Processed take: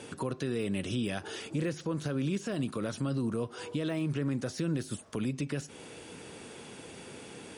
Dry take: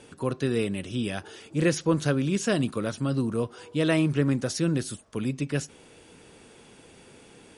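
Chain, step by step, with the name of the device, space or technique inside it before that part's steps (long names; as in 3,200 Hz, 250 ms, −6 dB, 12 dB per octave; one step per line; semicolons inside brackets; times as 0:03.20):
podcast mastering chain (high-pass filter 80 Hz; de-essing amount 90%; downward compressor 3 to 1, threshold −34 dBFS, peak gain reduction 12.5 dB; brickwall limiter −28.5 dBFS, peak gain reduction 7 dB; level +5.5 dB; MP3 96 kbit/s 44,100 Hz)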